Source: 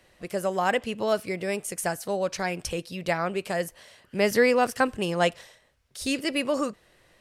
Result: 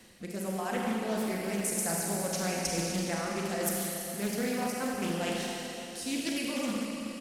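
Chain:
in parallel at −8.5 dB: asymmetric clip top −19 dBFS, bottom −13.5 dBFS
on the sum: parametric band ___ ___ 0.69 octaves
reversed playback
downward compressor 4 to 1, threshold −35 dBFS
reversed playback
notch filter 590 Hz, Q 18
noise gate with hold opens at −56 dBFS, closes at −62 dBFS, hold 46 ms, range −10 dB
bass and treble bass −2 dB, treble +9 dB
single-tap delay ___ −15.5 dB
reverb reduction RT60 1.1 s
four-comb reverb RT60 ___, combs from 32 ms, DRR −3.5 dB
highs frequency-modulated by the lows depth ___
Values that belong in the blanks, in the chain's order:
220 Hz, +13.5 dB, 71 ms, 3.5 s, 0.28 ms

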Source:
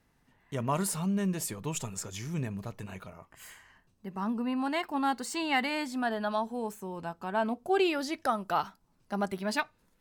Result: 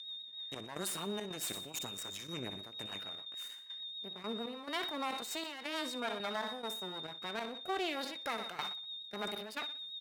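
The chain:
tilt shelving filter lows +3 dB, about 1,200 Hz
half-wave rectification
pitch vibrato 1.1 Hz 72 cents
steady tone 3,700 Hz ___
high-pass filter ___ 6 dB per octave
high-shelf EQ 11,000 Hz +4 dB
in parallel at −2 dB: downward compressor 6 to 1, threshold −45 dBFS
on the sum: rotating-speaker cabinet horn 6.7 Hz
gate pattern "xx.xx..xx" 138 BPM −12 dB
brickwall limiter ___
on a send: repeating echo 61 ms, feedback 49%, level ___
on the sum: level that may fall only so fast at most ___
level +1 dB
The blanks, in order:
−46 dBFS, 880 Hz, −26.5 dBFS, −17 dB, 46 dB per second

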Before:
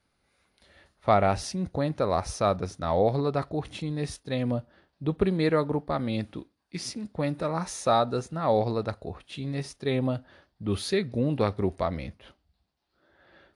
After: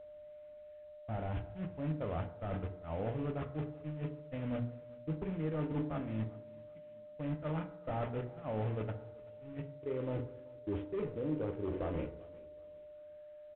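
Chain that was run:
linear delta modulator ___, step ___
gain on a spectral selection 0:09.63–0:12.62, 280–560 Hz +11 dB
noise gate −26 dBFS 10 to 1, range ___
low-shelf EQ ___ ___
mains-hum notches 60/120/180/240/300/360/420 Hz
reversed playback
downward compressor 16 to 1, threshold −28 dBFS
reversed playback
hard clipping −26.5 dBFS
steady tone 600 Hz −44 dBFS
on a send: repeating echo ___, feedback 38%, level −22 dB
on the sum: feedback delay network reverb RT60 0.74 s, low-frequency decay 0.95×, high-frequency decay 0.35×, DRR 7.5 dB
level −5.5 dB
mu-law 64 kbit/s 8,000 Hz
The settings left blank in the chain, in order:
16 kbit/s, −30.5 dBFS, −36 dB, 290 Hz, +11 dB, 384 ms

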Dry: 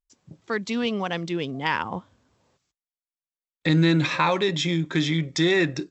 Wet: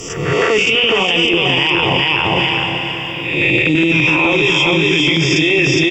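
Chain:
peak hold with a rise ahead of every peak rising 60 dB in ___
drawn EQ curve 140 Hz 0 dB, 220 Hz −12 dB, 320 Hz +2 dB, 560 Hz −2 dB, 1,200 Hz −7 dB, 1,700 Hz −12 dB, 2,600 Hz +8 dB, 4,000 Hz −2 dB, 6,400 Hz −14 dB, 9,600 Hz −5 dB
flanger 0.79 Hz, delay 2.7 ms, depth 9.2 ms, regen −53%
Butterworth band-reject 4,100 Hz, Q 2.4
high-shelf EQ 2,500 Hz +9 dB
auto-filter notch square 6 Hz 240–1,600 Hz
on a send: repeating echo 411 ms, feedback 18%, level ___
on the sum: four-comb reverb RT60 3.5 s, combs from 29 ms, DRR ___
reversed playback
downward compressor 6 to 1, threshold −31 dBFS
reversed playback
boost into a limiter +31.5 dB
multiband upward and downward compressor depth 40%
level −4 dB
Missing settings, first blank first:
0.75 s, −4 dB, 11.5 dB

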